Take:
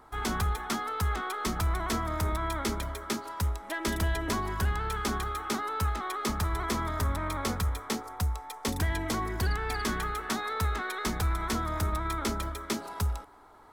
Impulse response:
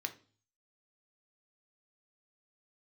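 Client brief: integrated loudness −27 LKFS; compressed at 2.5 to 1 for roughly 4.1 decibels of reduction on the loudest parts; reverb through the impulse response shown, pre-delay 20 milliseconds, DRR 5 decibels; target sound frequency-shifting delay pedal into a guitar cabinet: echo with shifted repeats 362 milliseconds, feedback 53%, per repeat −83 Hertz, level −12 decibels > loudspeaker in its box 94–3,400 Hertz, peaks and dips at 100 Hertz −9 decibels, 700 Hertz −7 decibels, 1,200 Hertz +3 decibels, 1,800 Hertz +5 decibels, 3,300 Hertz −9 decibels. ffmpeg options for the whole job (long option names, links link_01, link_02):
-filter_complex "[0:a]acompressor=threshold=-30dB:ratio=2.5,asplit=2[link_01][link_02];[1:a]atrim=start_sample=2205,adelay=20[link_03];[link_02][link_03]afir=irnorm=-1:irlink=0,volume=-5.5dB[link_04];[link_01][link_04]amix=inputs=2:normalize=0,asplit=7[link_05][link_06][link_07][link_08][link_09][link_10][link_11];[link_06]adelay=362,afreqshift=-83,volume=-12dB[link_12];[link_07]adelay=724,afreqshift=-166,volume=-17.5dB[link_13];[link_08]adelay=1086,afreqshift=-249,volume=-23dB[link_14];[link_09]adelay=1448,afreqshift=-332,volume=-28.5dB[link_15];[link_10]adelay=1810,afreqshift=-415,volume=-34.1dB[link_16];[link_11]adelay=2172,afreqshift=-498,volume=-39.6dB[link_17];[link_05][link_12][link_13][link_14][link_15][link_16][link_17]amix=inputs=7:normalize=0,highpass=94,equalizer=frequency=100:width_type=q:width=4:gain=-9,equalizer=frequency=700:width_type=q:width=4:gain=-7,equalizer=frequency=1200:width_type=q:width=4:gain=3,equalizer=frequency=1800:width_type=q:width=4:gain=5,equalizer=frequency=3300:width_type=q:width=4:gain=-9,lowpass=frequency=3400:width=0.5412,lowpass=frequency=3400:width=1.3066,volume=6.5dB"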